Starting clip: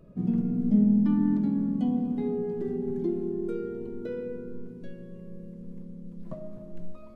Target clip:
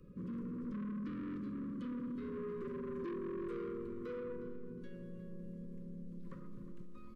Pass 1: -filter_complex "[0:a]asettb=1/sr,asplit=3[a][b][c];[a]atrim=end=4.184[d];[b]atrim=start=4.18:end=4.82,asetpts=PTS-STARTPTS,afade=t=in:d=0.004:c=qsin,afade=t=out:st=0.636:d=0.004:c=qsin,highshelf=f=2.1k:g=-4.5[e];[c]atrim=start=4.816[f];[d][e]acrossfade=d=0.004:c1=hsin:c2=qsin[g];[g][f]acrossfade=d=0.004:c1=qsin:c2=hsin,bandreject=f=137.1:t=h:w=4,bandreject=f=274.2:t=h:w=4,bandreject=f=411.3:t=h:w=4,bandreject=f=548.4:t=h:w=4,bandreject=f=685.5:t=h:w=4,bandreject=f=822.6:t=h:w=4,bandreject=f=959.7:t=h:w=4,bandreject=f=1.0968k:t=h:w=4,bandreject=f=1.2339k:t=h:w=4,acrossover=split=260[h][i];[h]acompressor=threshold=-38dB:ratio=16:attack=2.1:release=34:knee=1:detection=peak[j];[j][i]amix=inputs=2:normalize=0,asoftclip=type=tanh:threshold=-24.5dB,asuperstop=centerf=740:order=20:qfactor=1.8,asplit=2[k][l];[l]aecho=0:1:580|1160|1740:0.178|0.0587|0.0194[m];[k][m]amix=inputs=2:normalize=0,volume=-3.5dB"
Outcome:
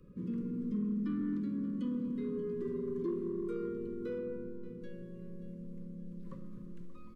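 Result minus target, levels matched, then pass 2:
echo 0.219 s late; soft clip: distortion -12 dB
-filter_complex "[0:a]asettb=1/sr,asplit=3[a][b][c];[a]atrim=end=4.184[d];[b]atrim=start=4.18:end=4.82,asetpts=PTS-STARTPTS,afade=t=in:d=0.004:c=qsin,afade=t=out:st=0.636:d=0.004:c=qsin,highshelf=f=2.1k:g=-4.5[e];[c]atrim=start=4.816[f];[d][e]acrossfade=d=0.004:c1=hsin:c2=qsin[g];[g][f]acrossfade=d=0.004:c1=qsin:c2=hsin,bandreject=f=137.1:t=h:w=4,bandreject=f=274.2:t=h:w=4,bandreject=f=411.3:t=h:w=4,bandreject=f=548.4:t=h:w=4,bandreject=f=685.5:t=h:w=4,bandreject=f=822.6:t=h:w=4,bandreject=f=959.7:t=h:w=4,bandreject=f=1.0968k:t=h:w=4,bandreject=f=1.2339k:t=h:w=4,acrossover=split=260[h][i];[h]acompressor=threshold=-38dB:ratio=16:attack=2.1:release=34:knee=1:detection=peak[j];[j][i]amix=inputs=2:normalize=0,asoftclip=type=tanh:threshold=-35.5dB,asuperstop=centerf=740:order=20:qfactor=1.8,asplit=2[k][l];[l]aecho=0:1:361|722|1083:0.178|0.0587|0.0194[m];[k][m]amix=inputs=2:normalize=0,volume=-3.5dB"

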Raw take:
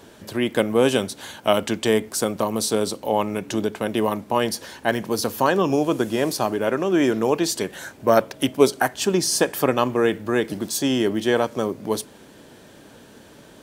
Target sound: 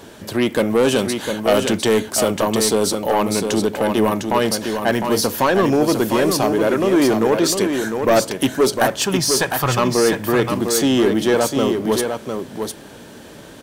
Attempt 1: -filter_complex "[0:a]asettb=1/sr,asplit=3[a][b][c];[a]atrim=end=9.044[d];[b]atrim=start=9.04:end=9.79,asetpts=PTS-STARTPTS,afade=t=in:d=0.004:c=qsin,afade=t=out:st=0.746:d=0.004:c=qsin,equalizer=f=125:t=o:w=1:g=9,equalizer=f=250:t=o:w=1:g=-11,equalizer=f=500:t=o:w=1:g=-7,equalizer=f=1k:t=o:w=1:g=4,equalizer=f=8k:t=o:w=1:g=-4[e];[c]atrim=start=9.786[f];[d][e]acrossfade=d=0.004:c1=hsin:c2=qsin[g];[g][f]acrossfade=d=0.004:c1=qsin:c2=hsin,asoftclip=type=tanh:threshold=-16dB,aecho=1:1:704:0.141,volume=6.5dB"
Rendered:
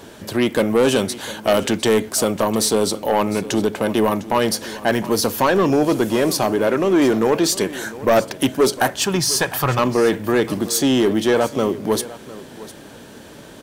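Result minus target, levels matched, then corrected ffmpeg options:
echo-to-direct -11 dB
-filter_complex "[0:a]asettb=1/sr,asplit=3[a][b][c];[a]atrim=end=9.044[d];[b]atrim=start=9.04:end=9.79,asetpts=PTS-STARTPTS,afade=t=in:d=0.004:c=qsin,afade=t=out:st=0.746:d=0.004:c=qsin,equalizer=f=125:t=o:w=1:g=9,equalizer=f=250:t=o:w=1:g=-11,equalizer=f=500:t=o:w=1:g=-7,equalizer=f=1k:t=o:w=1:g=4,equalizer=f=8k:t=o:w=1:g=-4[e];[c]atrim=start=9.786[f];[d][e]acrossfade=d=0.004:c1=hsin:c2=qsin[g];[g][f]acrossfade=d=0.004:c1=qsin:c2=hsin,asoftclip=type=tanh:threshold=-16dB,aecho=1:1:704:0.501,volume=6.5dB"

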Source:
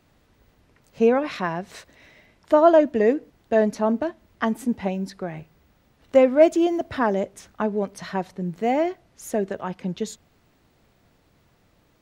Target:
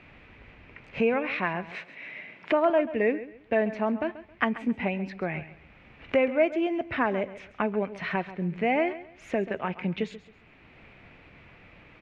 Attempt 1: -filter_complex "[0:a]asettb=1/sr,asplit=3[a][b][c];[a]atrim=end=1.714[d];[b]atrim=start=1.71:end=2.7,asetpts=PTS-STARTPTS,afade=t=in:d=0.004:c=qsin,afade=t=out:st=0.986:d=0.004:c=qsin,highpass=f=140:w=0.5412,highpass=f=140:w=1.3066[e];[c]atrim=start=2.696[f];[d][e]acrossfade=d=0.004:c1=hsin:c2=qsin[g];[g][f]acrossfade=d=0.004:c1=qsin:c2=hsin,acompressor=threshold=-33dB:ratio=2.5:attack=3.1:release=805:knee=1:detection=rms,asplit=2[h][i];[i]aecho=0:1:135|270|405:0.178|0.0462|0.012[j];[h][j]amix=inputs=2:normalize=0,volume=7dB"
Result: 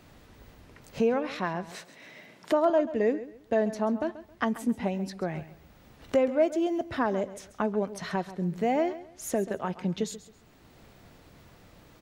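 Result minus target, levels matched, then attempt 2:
2000 Hz band -6.5 dB
-filter_complex "[0:a]asettb=1/sr,asplit=3[a][b][c];[a]atrim=end=1.714[d];[b]atrim=start=1.71:end=2.7,asetpts=PTS-STARTPTS,afade=t=in:d=0.004:c=qsin,afade=t=out:st=0.986:d=0.004:c=qsin,highpass=f=140:w=0.5412,highpass=f=140:w=1.3066[e];[c]atrim=start=2.696[f];[d][e]acrossfade=d=0.004:c1=hsin:c2=qsin[g];[g][f]acrossfade=d=0.004:c1=qsin:c2=hsin,acompressor=threshold=-33dB:ratio=2.5:attack=3.1:release=805:knee=1:detection=rms,lowpass=f=2.4k:t=q:w=4.6,asplit=2[h][i];[i]aecho=0:1:135|270|405:0.178|0.0462|0.012[j];[h][j]amix=inputs=2:normalize=0,volume=7dB"

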